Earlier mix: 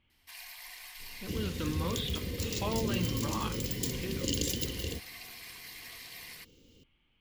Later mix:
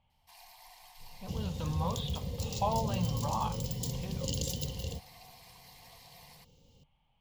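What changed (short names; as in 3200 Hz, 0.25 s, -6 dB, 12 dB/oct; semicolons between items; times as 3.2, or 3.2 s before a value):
first sound -5.0 dB; master: add EQ curve 100 Hz 0 dB, 150 Hz +5 dB, 340 Hz -15 dB, 530 Hz +1 dB, 830 Hz +12 dB, 1400 Hz -9 dB, 2100 Hz -9 dB, 4100 Hz -3 dB, 6600 Hz -3 dB, 10000 Hz -5 dB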